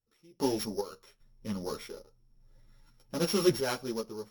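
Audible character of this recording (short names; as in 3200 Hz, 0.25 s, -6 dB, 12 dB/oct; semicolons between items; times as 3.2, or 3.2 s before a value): a buzz of ramps at a fixed pitch in blocks of 8 samples; random-step tremolo 2.5 Hz, depth 95%; a shimmering, thickened sound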